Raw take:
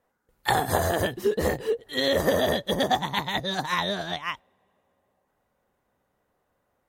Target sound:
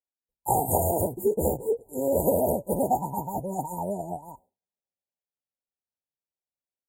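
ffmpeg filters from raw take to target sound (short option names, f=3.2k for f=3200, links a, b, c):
-af "afftfilt=real='re*(1-between(b*sr/4096,980,6700))':imag='im*(1-between(b*sr/4096,980,6700))':win_size=4096:overlap=0.75,agate=range=-33dB:threshold=-50dB:ratio=3:detection=peak,highshelf=f=9.7k:g=10.5"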